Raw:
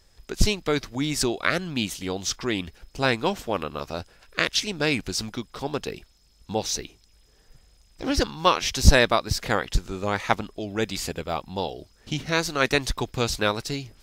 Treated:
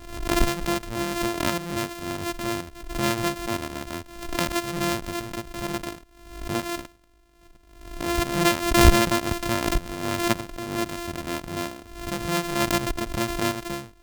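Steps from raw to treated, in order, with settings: sample sorter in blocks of 128 samples; backwards sustainer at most 69 dB/s; gain -2 dB

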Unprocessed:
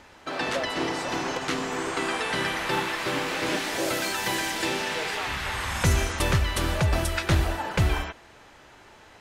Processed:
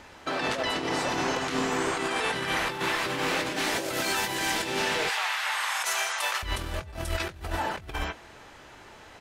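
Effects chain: 5.09–6.43 HPF 710 Hz 24 dB/oct; negative-ratio compressor -29 dBFS, ratio -0.5; doubler 23 ms -14 dB

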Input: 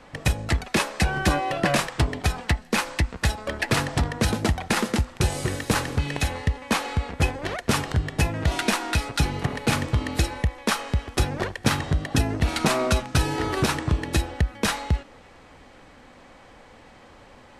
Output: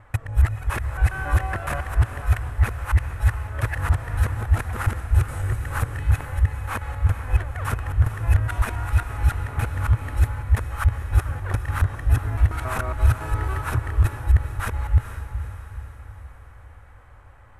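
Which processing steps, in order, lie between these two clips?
local time reversal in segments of 0.139 s; EQ curve 110 Hz 0 dB, 170 Hz -22 dB, 730 Hz -13 dB, 1400 Hz -6 dB, 4700 Hz -27 dB, 12000 Hz -9 dB; diffused feedback echo 0.455 s, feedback 52%, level -10 dB; gain +6 dB

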